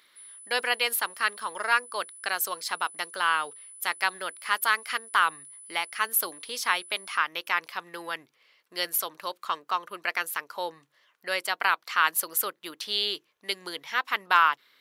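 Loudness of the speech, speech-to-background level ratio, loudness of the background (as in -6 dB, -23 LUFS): -28.0 LUFS, 16.5 dB, -44.5 LUFS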